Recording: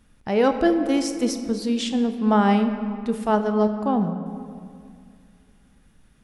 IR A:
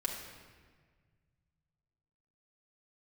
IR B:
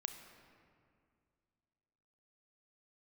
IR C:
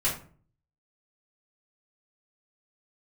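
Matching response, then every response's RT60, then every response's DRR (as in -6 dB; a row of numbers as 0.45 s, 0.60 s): B; 1.6 s, 2.2 s, 0.45 s; -2.5 dB, 7.0 dB, -8.0 dB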